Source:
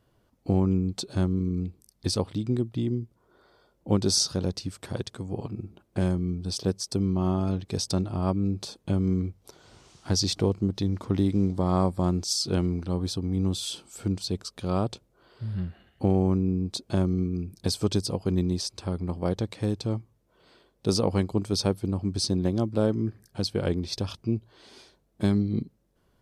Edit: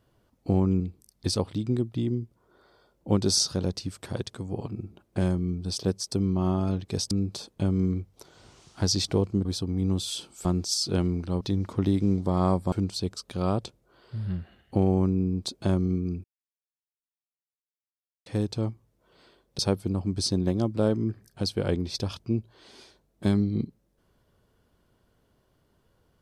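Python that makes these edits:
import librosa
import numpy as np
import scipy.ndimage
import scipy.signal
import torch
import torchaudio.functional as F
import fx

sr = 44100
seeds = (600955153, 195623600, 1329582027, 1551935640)

y = fx.edit(x, sr, fx.cut(start_s=0.8, length_s=0.8),
    fx.cut(start_s=7.91, length_s=0.48),
    fx.swap(start_s=10.73, length_s=1.31, other_s=13.0, other_length_s=1.0),
    fx.silence(start_s=17.52, length_s=2.02),
    fx.cut(start_s=20.87, length_s=0.7), tone=tone)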